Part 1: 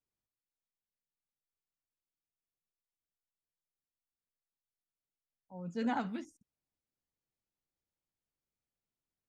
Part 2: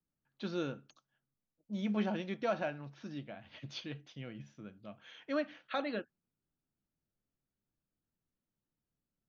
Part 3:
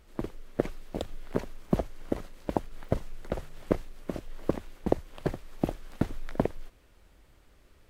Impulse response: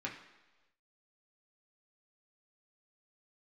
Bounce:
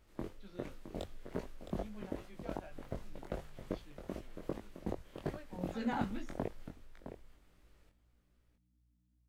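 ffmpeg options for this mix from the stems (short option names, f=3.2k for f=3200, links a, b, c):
-filter_complex "[0:a]volume=1dB[a];[1:a]aeval=exprs='val(0)+0.00178*(sin(2*PI*60*n/s)+sin(2*PI*2*60*n/s)/2+sin(2*PI*3*60*n/s)/3+sin(2*PI*4*60*n/s)/4+sin(2*PI*5*60*n/s)/5)':c=same,volume=-14.5dB[b];[2:a]alimiter=limit=-15dB:level=0:latency=1:release=116,acontrast=81,volume=-11.5dB,asplit=2[c][d];[d]volume=-10dB,aecho=0:1:664:1[e];[a][b][c][e]amix=inputs=4:normalize=0,flanger=delay=18.5:depth=4.3:speed=2.6"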